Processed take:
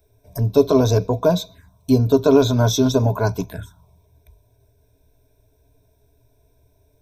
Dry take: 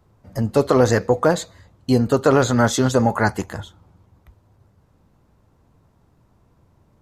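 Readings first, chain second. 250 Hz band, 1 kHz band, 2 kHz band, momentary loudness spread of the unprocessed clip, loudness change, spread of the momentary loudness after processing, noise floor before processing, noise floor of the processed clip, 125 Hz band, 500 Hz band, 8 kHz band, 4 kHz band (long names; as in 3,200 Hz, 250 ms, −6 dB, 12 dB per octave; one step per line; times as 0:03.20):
+1.0 dB, −5.0 dB, −9.0 dB, 17 LU, +0.5 dB, 19 LU, −60 dBFS, −61 dBFS, +3.0 dB, +0.5 dB, −1.5 dB, +2.5 dB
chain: high-shelf EQ 9,200 Hz +11.5 dB
phaser swept by the level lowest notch 190 Hz, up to 1,800 Hz, full sweep at −21.5 dBFS
EQ curve with evenly spaced ripples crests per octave 1.6, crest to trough 15 dB
level −1.5 dB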